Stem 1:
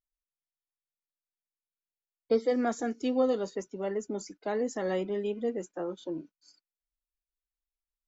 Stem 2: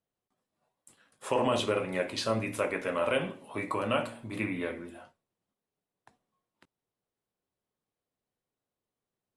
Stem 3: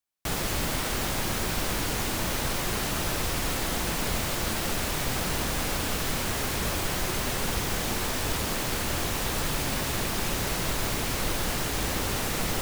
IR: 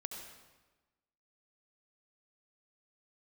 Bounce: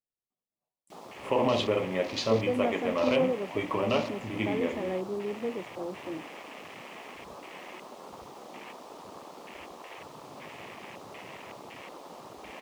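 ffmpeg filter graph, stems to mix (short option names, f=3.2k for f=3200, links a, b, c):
-filter_complex "[0:a]volume=-2dB[a];[1:a]volume=1dB,asplit=2[b][c];[c]volume=-13dB[d];[2:a]acrossover=split=7200[e][f];[f]acompressor=threshold=-43dB:ratio=4:attack=1:release=60[g];[e][g]amix=inputs=2:normalize=0,highpass=f=720:p=1,adelay=650,volume=-6.5dB,asplit=3[h][i][j];[i]volume=-19dB[k];[j]volume=-11dB[l];[3:a]atrim=start_sample=2205[m];[d][k]amix=inputs=2:normalize=0[n];[n][m]afir=irnorm=-1:irlink=0[o];[l]aecho=0:1:288:1[p];[a][b][h][o][p]amix=inputs=5:normalize=0,afwtdn=0.0126,equalizer=f=1.5k:t=o:w=0.41:g=-12"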